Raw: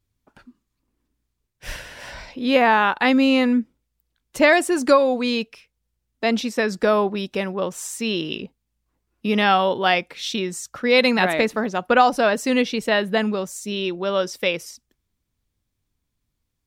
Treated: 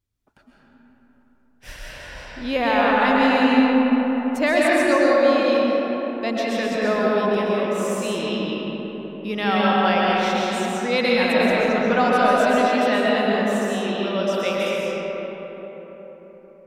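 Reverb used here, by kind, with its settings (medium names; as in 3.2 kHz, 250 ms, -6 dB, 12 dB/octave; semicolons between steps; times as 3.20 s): algorithmic reverb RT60 4.7 s, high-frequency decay 0.4×, pre-delay 90 ms, DRR -6 dB; trim -6.5 dB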